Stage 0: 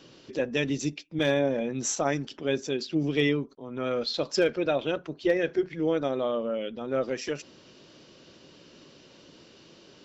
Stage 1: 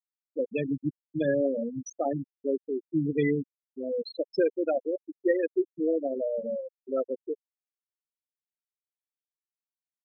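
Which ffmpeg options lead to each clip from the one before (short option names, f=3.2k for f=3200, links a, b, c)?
-filter_complex "[0:a]highpass=60,afftfilt=real='re*gte(hypot(re,im),0.178)':imag='im*gte(hypot(re,im),0.178)':win_size=1024:overlap=0.75,acrossover=split=420|1700[a][b][c];[c]alimiter=level_in=10dB:limit=-24dB:level=0:latency=1:release=481,volume=-10dB[d];[a][b][d]amix=inputs=3:normalize=0"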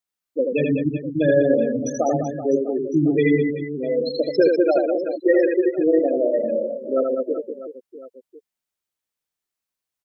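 -af "aecho=1:1:80|200|380|650|1055:0.631|0.398|0.251|0.158|0.1,volume=7.5dB"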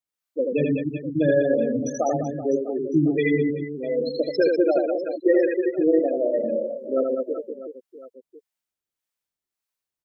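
-filter_complex "[0:a]acrossover=split=570[a][b];[a]aeval=exprs='val(0)*(1-0.5/2+0.5/2*cos(2*PI*1.7*n/s))':c=same[c];[b]aeval=exprs='val(0)*(1-0.5/2-0.5/2*cos(2*PI*1.7*n/s))':c=same[d];[c][d]amix=inputs=2:normalize=0"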